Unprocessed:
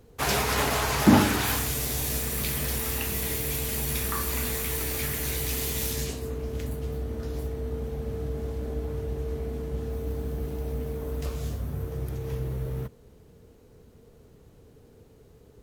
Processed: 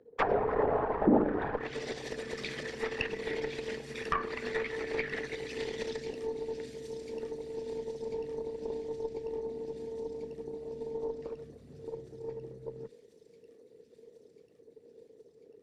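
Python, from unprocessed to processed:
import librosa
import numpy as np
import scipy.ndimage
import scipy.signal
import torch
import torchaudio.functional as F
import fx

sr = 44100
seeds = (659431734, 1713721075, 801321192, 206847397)

p1 = fx.envelope_sharpen(x, sr, power=2.0)
p2 = fx.cabinet(p1, sr, low_hz=420.0, low_slope=12, high_hz=6800.0, hz=(470.0, 1800.0, 6600.0), db=(7, 9, -8))
p3 = fx.cheby_harmonics(p2, sr, harmonics=(8,), levels_db=(-21,), full_scale_db=-12.0)
p4 = p3 + fx.echo_wet_highpass(p3, sr, ms=1043, feedback_pct=70, hz=5100.0, wet_db=-7, dry=0)
p5 = fx.env_lowpass_down(p4, sr, base_hz=670.0, full_db=-24.0)
y = p5 * 10.0 ** (1.5 / 20.0)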